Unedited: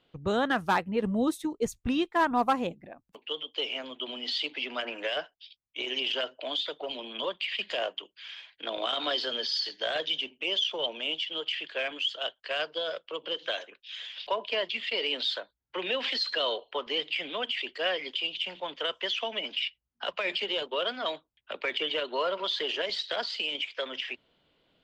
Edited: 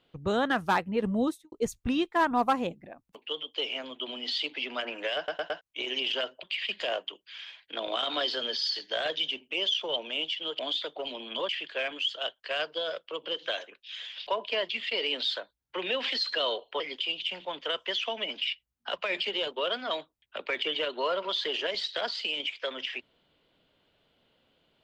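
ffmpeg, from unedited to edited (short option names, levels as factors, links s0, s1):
-filter_complex "[0:a]asplit=10[s0][s1][s2][s3][s4][s5][s6][s7][s8][s9];[s0]atrim=end=1.52,asetpts=PTS-STARTPTS,afade=t=out:st=1.25:d=0.27:c=qua[s10];[s1]atrim=start=1.52:end=5.282,asetpts=PTS-STARTPTS,afade=t=in:d=0.004:c=hsin[s11];[s2]atrim=start=5.168:end=5.282[s12];[s3]atrim=start=5.168:end=5.282[s13];[s4]atrim=start=5.168:end=5.282[s14];[s5]atrim=start=5.608:end=6.432[s15];[s6]atrim=start=7.328:end=11.492[s16];[s7]atrim=start=6.428:end=7.332[s17];[s8]atrim=start=11.488:end=16.802[s18];[s9]atrim=start=17.948[s19];[s10][s11]concat=n=2:v=0:a=1[s20];[s20][s12]acrossfade=d=0.004:c1=hsin:c2=hsin[s21];[s21][s13]acrossfade=d=0.004:c1=hsin:c2=hsin[s22];[s22][s14]acrossfade=d=0.004:c1=hsin:c2=hsin[s23];[s23][s15]acrossfade=d=0.004:c1=hsin:c2=hsin[s24];[s24][s16]acrossfade=d=0.004:c1=hsin:c2=hsin[s25];[s25][s17]acrossfade=d=0.004:c1=hsin:c2=hsin[s26];[s26][s18]acrossfade=d=0.004:c1=hsin:c2=hsin[s27];[s27][s19]acrossfade=d=0.004:c1=hsin:c2=hsin"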